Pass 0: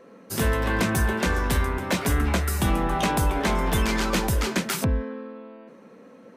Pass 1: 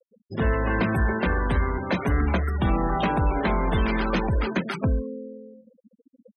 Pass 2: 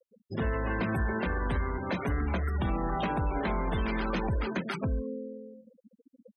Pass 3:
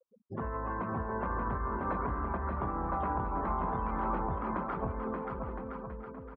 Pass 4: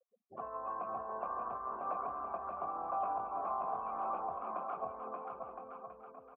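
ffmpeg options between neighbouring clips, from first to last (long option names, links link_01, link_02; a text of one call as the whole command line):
ffmpeg -i in.wav -af "highshelf=frequency=4700:gain=-9,afftfilt=real='re*gte(hypot(re,im),0.0355)':imag='im*gte(hypot(re,im),0.0355)':win_size=1024:overlap=0.75,acontrast=43,volume=-5dB" out.wav
ffmpeg -i in.wav -af "alimiter=limit=-20.5dB:level=0:latency=1:release=145,volume=-2dB" out.wav
ffmpeg -i in.wav -af "acompressor=threshold=-31dB:ratio=4,lowpass=frequency=1100:width_type=q:width=3.4,aecho=1:1:580|1015|1341|1586|1769:0.631|0.398|0.251|0.158|0.1,volume=-4dB" out.wav
ffmpeg -i in.wav -filter_complex "[0:a]asplit=3[link_01][link_02][link_03];[link_01]bandpass=frequency=730:width_type=q:width=8,volume=0dB[link_04];[link_02]bandpass=frequency=1090:width_type=q:width=8,volume=-6dB[link_05];[link_03]bandpass=frequency=2440:width_type=q:width=8,volume=-9dB[link_06];[link_04][link_05][link_06]amix=inputs=3:normalize=0,volume=5.5dB" out.wav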